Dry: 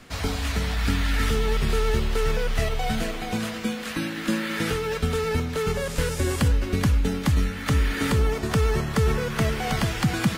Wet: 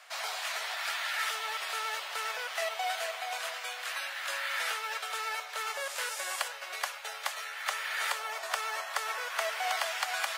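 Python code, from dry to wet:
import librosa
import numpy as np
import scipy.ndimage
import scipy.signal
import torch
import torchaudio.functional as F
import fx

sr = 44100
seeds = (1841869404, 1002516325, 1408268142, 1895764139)

y = scipy.signal.sosfilt(scipy.signal.ellip(4, 1.0, 60, 630.0, 'highpass', fs=sr, output='sos'), x)
y = y * 10.0 ** (-2.0 / 20.0)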